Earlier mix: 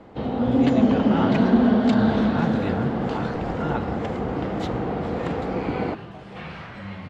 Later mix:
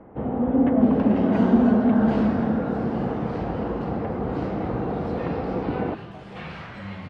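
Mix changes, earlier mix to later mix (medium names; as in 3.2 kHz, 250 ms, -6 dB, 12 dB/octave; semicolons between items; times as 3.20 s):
speech: muted; first sound: add Gaussian low-pass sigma 4.5 samples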